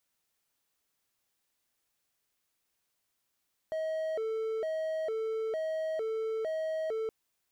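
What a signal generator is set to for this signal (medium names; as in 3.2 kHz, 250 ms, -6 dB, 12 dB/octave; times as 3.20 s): siren hi-lo 443–635 Hz 1.1 per s triangle -28.5 dBFS 3.37 s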